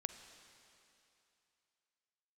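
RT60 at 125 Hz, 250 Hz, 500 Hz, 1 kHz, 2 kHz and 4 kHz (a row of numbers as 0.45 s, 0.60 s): 2.7 s, 2.6 s, 2.7 s, 2.9 s, 2.9 s, 2.9 s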